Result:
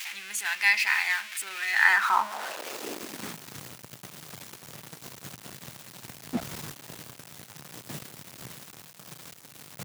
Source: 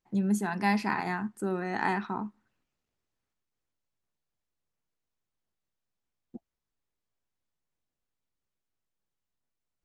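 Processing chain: jump at every zero crossing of -35.5 dBFS; high-pass sweep 2.3 kHz -> 130 Hz, 1.70–3.48 s; trim +7 dB

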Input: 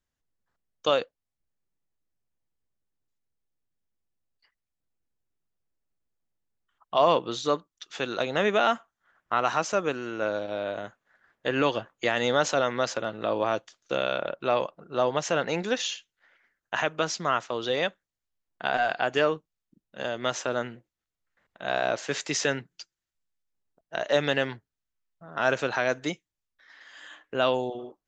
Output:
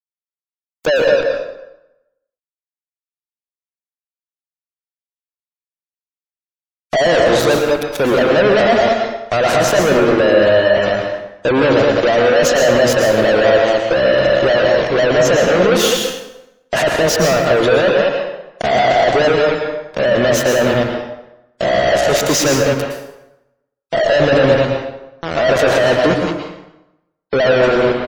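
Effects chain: resonant low shelf 770 Hz +7.5 dB, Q 3; speakerphone echo 210 ms, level -15 dB; fuzz box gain 41 dB, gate -33 dBFS; spectral gate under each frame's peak -30 dB strong; plate-style reverb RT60 0.91 s, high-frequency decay 0.75×, pre-delay 100 ms, DRR 2 dB; trim +1 dB

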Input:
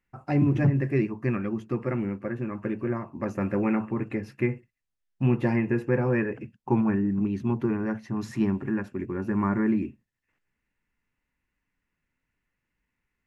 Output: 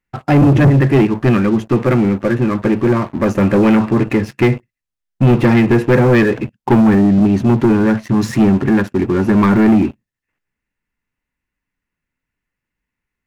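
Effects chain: waveshaping leveller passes 3; trim +6 dB

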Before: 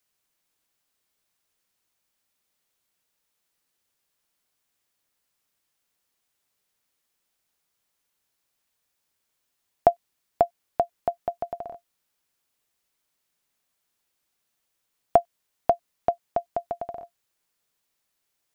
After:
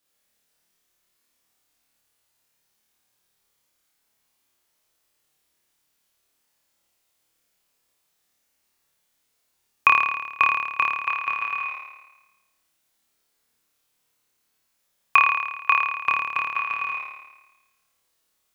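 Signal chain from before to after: ring modulator 1.8 kHz; flutter echo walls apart 4.7 m, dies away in 1.1 s; trim +3 dB

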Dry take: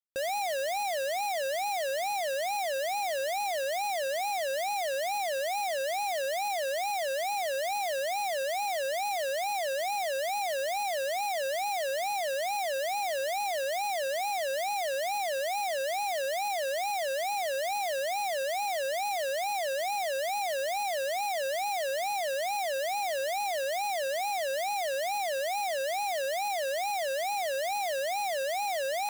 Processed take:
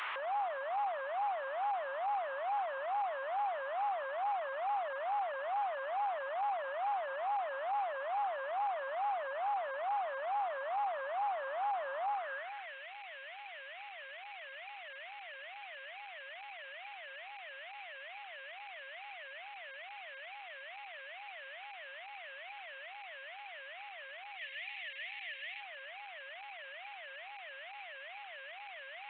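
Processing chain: one-bit delta coder 16 kbps, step -41 dBFS; time-frequency box 24.37–25.60 s, 220–1700 Hz -12 dB; peak limiter -36 dBFS, peak gain reduction 6.5 dB; high-pass sweep 1.1 kHz -> 2.3 kHz, 12.09–12.77 s; trim +6 dB

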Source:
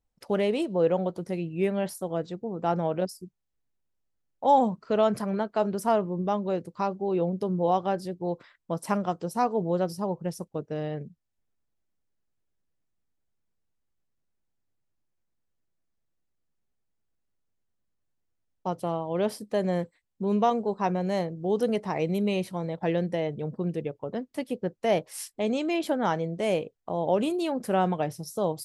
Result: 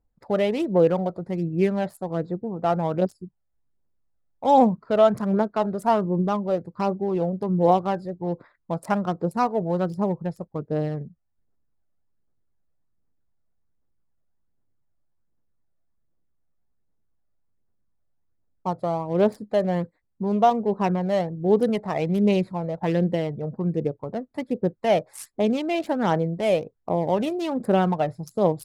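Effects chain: local Wiener filter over 15 samples; phaser 1.3 Hz, delay 1.7 ms, feedback 40%; trim +3.5 dB

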